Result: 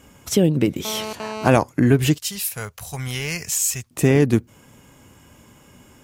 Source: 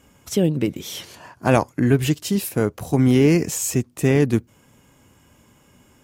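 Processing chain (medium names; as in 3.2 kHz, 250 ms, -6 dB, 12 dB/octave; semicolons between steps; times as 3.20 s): 2.18–3.91 s: amplifier tone stack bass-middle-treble 10-0-10; compression 1.5:1, threshold -22 dBFS, peak gain reduction 4.5 dB; 0.85–1.48 s: mobile phone buzz -35 dBFS; trim +5 dB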